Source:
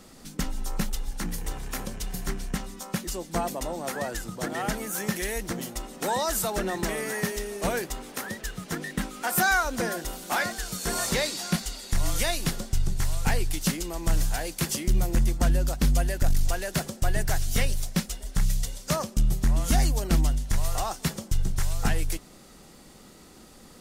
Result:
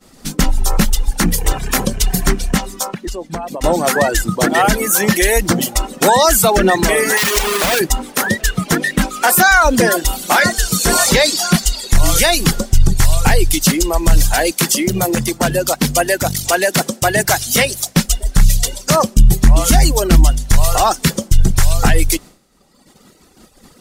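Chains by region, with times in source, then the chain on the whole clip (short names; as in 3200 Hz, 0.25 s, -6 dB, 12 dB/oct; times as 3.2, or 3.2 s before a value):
2.88–3.64 LPF 3300 Hz 6 dB/oct + compressor 20:1, threshold -37 dBFS
7.17–7.8 half-waves squared off + tilt shelf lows -6.5 dB, about 920 Hz + compressor 4:1, threshold -26 dBFS
14.51–17.97 HPF 180 Hz + core saturation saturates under 490 Hz
whole clip: expander -40 dBFS; reverb removal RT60 1.1 s; maximiser +20.5 dB; gain -1 dB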